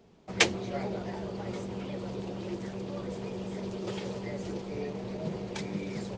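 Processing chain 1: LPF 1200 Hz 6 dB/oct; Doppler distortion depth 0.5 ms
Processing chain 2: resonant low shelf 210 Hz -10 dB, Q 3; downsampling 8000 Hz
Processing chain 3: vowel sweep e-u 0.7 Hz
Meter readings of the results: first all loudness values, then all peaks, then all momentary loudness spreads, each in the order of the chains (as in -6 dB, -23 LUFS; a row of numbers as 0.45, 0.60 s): -37.0, -34.5, -46.0 LUFS; -11.0, -7.5, -20.5 dBFS; 6, 10, 11 LU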